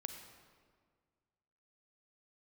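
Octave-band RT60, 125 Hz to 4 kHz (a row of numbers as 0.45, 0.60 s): 2.2, 2.0, 1.9, 1.7, 1.4, 1.2 s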